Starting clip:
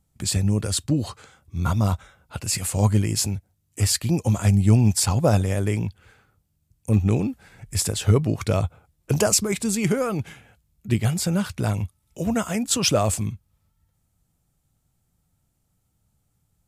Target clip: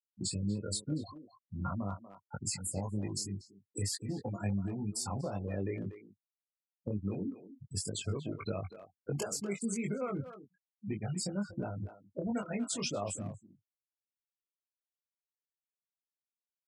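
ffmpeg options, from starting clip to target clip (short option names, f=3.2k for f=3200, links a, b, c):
-filter_complex "[0:a]afftfilt=real='re*gte(hypot(re,im),0.0631)':imag='im*gte(hypot(re,im),0.0631)':win_size=1024:overlap=0.75,highpass=150,alimiter=limit=-16dB:level=0:latency=1:release=441,acompressor=threshold=-30dB:ratio=5,flanger=delay=19.5:depth=2.1:speed=2,atempo=1,asplit=2[a][b];[b]adelay=240,highpass=300,lowpass=3.4k,asoftclip=type=hard:threshold=-32.5dB,volume=-11dB[c];[a][c]amix=inputs=2:normalize=0"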